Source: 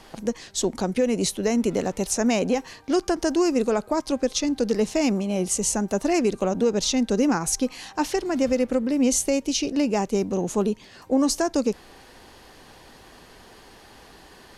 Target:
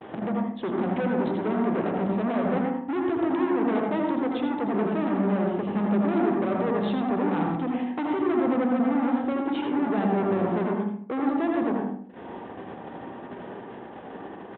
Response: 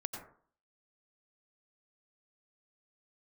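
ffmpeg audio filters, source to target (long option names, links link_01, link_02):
-filter_complex "[0:a]bandreject=frequency=50:width_type=h:width=6,bandreject=frequency=100:width_type=h:width=6,bandreject=frequency=150:width_type=h:width=6,bandreject=frequency=200:width_type=h:width=6,bandreject=frequency=250:width_type=h:width=6,bandreject=frequency=300:width_type=h:width=6,bandreject=frequency=350:width_type=h:width=6,asplit=2[link_01][link_02];[link_02]acompressor=mode=upward:threshold=-26dB:ratio=2.5,volume=0dB[link_03];[link_01][link_03]amix=inputs=2:normalize=0,tiltshelf=frequency=860:gain=6.5,alimiter=limit=-10.5dB:level=0:latency=1:release=18,aresample=8000,asoftclip=type=hard:threshold=-23dB,aresample=44100,agate=range=-47dB:threshold=-32dB:ratio=16:detection=peak,highpass=190,lowpass=2600,asplit=2[link_04][link_05];[link_05]adelay=77,lowpass=frequency=1100:poles=1,volume=-4dB,asplit=2[link_06][link_07];[link_07]adelay=77,lowpass=frequency=1100:poles=1,volume=0.43,asplit=2[link_08][link_09];[link_09]adelay=77,lowpass=frequency=1100:poles=1,volume=0.43,asplit=2[link_10][link_11];[link_11]adelay=77,lowpass=frequency=1100:poles=1,volume=0.43,asplit=2[link_12][link_13];[link_13]adelay=77,lowpass=frequency=1100:poles=1,volume=0.43[link_14];[link_04][link_06][link_08][link_10][link_12][link_14]amix=inputs=6:normalize=0[link_15];[1:a]atrim=start_sample=2205,afade=type=out:start_time=0.23:duration=0.01,atrim=end_sample=10584,asetrate=48510,aresample=44100[link_16];[link_15][link_16]afir=irnorm=-1:irlink=0"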